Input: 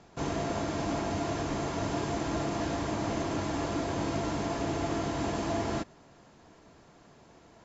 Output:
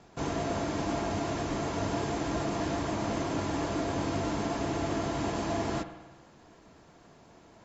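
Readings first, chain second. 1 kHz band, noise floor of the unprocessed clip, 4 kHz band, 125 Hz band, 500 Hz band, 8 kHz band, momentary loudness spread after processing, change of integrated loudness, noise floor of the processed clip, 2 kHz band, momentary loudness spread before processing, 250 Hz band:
+0.5 dB, -58 dBFS, 0.0 dB, 0.0 dB, +0.5 dB, no reading, 1 LU, +0.5 dB, -57 dBFS, +0.5 dB, 1 LU, +0.5 dB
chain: vibrato 8 Hz 23 cents; spring tank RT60 1.2 s, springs 52 ms, chirp 50 ms, DRR 10 dB

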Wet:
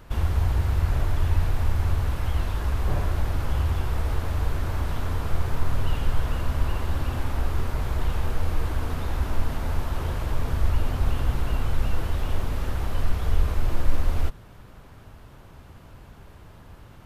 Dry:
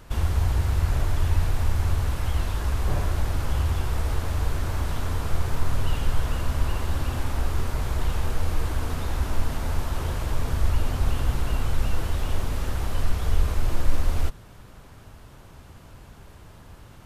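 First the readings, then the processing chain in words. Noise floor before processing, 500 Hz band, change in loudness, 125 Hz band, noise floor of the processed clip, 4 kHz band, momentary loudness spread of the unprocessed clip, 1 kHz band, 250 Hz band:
-47 dBFS, 0.0 dB, 0.0 dB, 0.0 dB, -47 dBFS, -2.5 dB, 5 LU, 0.0 dB, 0.0 dB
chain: peaking EQ 7.8 kHz -6 dB 1.7 oct

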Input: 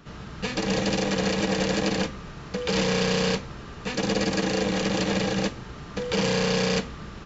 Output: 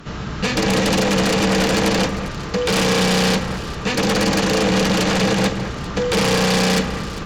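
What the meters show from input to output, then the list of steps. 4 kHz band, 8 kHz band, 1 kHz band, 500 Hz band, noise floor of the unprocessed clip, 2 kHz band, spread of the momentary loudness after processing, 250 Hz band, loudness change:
+8.0 dB, no reading, +9.5 dB, +7.0 dB, -41 dBFS, +8.5 dB, 9 LU, +7.5 dB, +7.5 dB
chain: sine folder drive 12 dB, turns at -9.5 dBFS; echo whose repeats swap between lows and highs 200 ms, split 2.5 kHz, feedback 53%, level -9.5 dB; trim -4.5 dB

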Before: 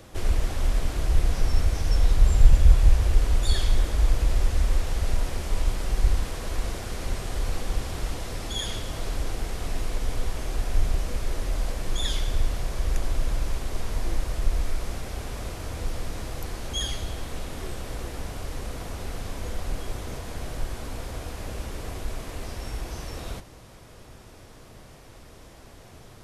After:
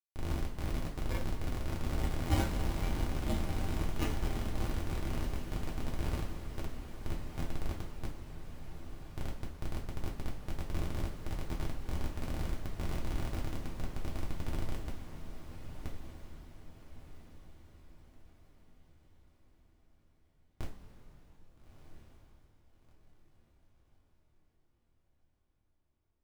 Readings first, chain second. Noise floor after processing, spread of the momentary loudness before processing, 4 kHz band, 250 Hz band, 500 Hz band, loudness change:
-73 dBFS, 15 LU, -14.5 dB, -3.0 dB, -8.5 dB, -10.0 dB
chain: low-pass 1.4 kHz 24 dB/octave; Schmitt trigger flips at -20 dBFS; spectral noise reduction 13 dB; echo that smears into a reverb 1312 ms, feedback 43%, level -9.5 dB; two-slope reverb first 0.3 s, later 4.5 s, from -18 dB, DRR -2.5 dB; trim +1.5 dB

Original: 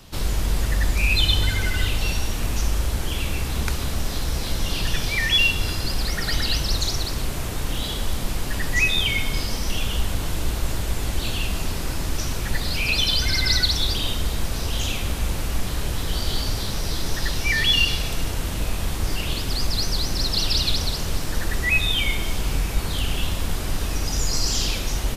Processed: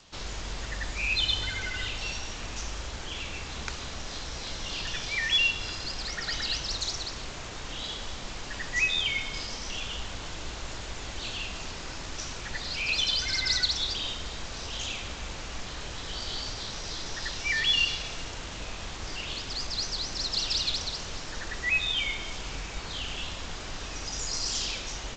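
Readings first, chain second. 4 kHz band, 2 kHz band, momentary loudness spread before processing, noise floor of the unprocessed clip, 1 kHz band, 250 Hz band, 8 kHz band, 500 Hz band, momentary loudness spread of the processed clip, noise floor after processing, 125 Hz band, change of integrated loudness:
-5.0 dB, -5.5 dB, 9 LU, -28 dBFS, -6.5 dB, -12.5 dB, -7.0 dB, -9.0 dB, 13 LU, -39 dBFS, -15.5 dB, -7.0 dB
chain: bass shelf 380 Hz -11 dB; trim -5 dB; G.722 64 kbps 16 kHz

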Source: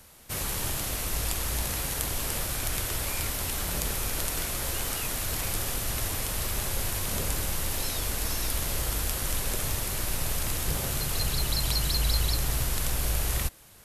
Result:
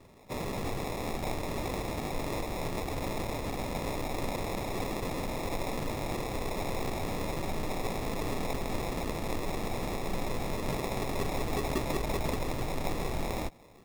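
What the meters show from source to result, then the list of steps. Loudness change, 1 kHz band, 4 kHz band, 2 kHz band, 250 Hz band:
-6.0 dB, +2.5 dB, -10.5 dB, -4.5 dB, +4.5 dB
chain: peaking EQ 61 Hz -11 dB 1.5 oct; sample-and-hold 29×; trim -2 dB

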